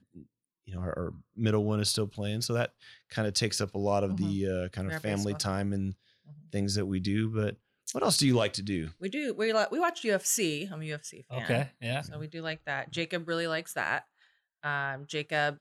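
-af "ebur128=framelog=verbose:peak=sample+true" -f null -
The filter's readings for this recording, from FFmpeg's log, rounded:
Integrated loudness:
  I:         -31.1 LUFS
  Threshold: -41.4 LUFS
Loudness range:
  LRA:         4.9 LU
  Threshold: -51.2 LUFS
  LRA low:   -33.8 LUFS
  LRA high:  -28.9 LUFS
Sample peak:
  Peak:      -13.9 dBFS
True peak:
  Peak:      -13.8 dBFS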